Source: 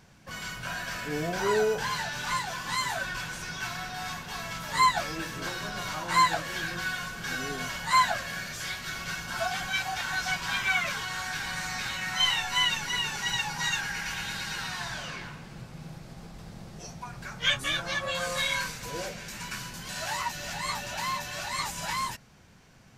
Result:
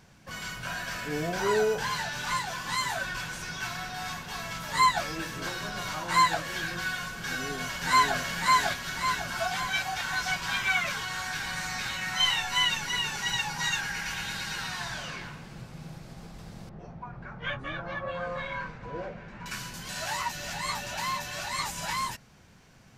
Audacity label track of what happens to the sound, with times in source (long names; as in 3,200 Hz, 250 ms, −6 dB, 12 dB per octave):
7.260000	8.180000	delay throw 550 ms, feedback 45%, level −0.5 dB
16.690000	19.460000	low-pass filter 1,400 Hz